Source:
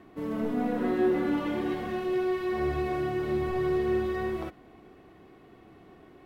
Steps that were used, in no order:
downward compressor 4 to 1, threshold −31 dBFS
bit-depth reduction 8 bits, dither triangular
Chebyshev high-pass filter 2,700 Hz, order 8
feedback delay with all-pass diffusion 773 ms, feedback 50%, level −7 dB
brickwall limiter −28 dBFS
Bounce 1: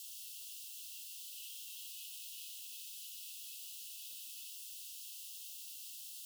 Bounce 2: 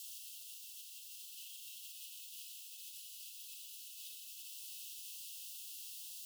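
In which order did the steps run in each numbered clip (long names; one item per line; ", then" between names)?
brickwall limiter, then feedback delay with all-pass diffusion, then bit-depth reduction, then Chebyshev high-pass filter, then downward compressor
feedback delay with all-pass diffusion, then downward compressor, then bit-depth reduction, then brickwall limiter, then Chebyshev high-pass filter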